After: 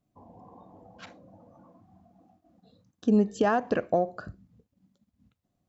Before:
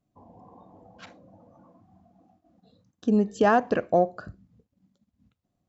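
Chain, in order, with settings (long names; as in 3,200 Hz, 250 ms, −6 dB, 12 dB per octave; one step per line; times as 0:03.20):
0:03.22–0:04.08: downward compressor, threshold −20 dBFS, peak gain reduction 5.5 dB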